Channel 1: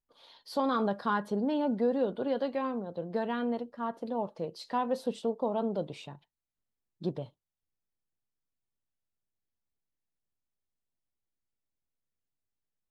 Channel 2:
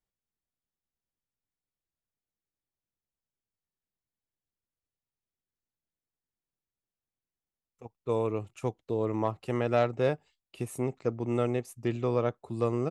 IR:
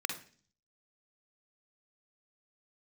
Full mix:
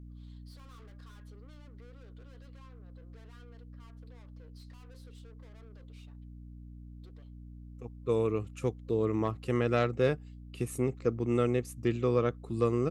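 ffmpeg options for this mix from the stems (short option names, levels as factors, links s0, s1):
-filter_complex "[0:a]highpass=630,adynamicequalizer=threshold=0.00631:dfrequency=860:dqfactor=1:tfrequency=860:tqfactor=1:attack=5:release=100:ratio=0.375:range=2:mode=cutabove:tftype=bell,aeval=exprs='(tanh(200*val(0)+0.6)-tanh(0.6))/200':c=same,volume=0.335,asplit=2[s0][s1];[1:a]aeval=exprs='val(0)+0.00447*(sin(2*PI*60*n/s)+sin(2*PI*2*60*n/s)/2+sin(2*PI*3*60*n/s)/3+sin(2*PI*4*60*n/s)/4+sin(2*PI*5*60*n/s)/5)':c=same,volume=1.12[s2];[s1]apad=whole_len=568905[s3];[s2][s3]sidechaincompress=threshold=0.00126:ratio=3:attack=16:release=296[s4];[s0][s4]amix=inputs=2:normalize=0,superequalizer=8b=0.447:9b=0.398"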